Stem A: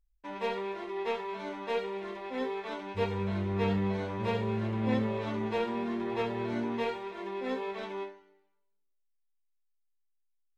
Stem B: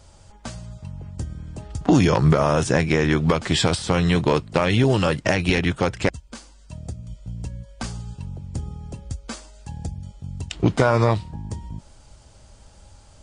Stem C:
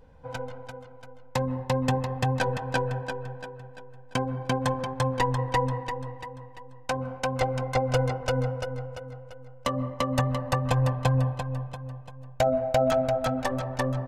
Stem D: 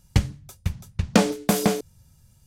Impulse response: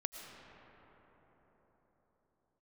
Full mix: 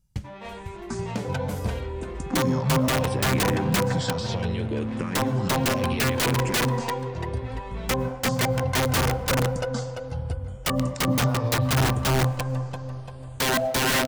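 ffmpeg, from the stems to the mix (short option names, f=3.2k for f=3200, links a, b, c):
-filter_complex "[0:a]bandreject=f=460:w=12,asoftclip=type=tanh:threshold=-32.5dB,flanger=delay=18.5:depth=4.3:speed=0.22,volume=2.5dB[a];[1:a]alimiter=limit=-14dB:level=0:latency=1,acompressor=threshold=-27dB:ratio=6,asplit=2[b][c];[c]afreqshift=-0.7[d];[b][d]amix=inputs=2:normalize=1,adelay=450,volume=0.5dB[e];[2:a]highpass=f=160:p=1,aeval=exprs='(mod(11.9*val(0)+1,2)-1)/11.9':c=same,adelay=1000,volume=2dB,asplit=2[f][g];[g]volume=-14dB[h];[3:a]volume=-17dB[i];[4:a]atrim=start_sample=2205[j];[h][j]afir=irnorm=-1:irlink=0[k];[a][e][f][i][k]amix=inputs=5:normalize=0,equalizer=f=130:w=0.45:g=5"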